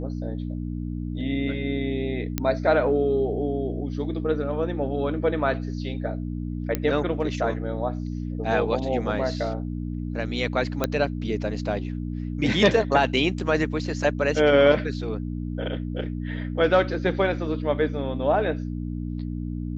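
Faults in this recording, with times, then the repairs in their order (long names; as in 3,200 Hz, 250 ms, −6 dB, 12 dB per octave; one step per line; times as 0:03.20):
mains hum 60 Hz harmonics 5 −30 dBFS
0:02.38: click −9 dBFS
0:06.75: click −10 dBFS
0:10.84: click −8 dBFS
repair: click removal
hum removal 60 Hz, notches 5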